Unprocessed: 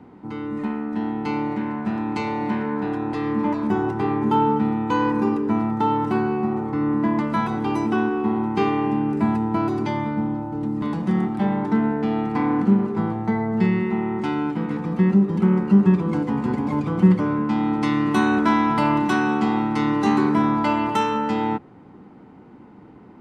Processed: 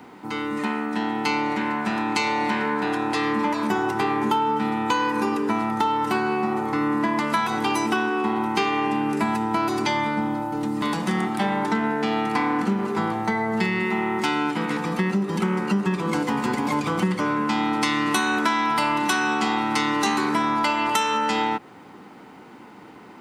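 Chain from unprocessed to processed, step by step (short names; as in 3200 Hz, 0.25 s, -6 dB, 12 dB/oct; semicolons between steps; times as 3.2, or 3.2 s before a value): tilt +4 dB/oct; compressor, threshold -26 dBFS, peak gain reduction 10 dB; gain +7 dB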